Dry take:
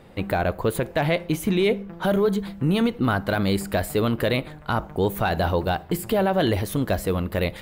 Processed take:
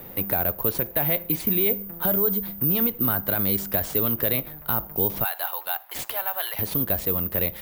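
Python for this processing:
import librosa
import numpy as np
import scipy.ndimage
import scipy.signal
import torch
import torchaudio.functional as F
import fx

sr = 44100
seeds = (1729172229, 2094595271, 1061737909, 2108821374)

y = fx.highpass(x, sr, hz=810.0, slope=24, at=(5.24, 6.59))
y = (np.kron(y[::3], np.eye(3)[0]) * 3)[:len(y)]
y = fx.band_squash(y, sr, depth_pct=40)
y = y * 10.0 ** (-6.0 / 20.0)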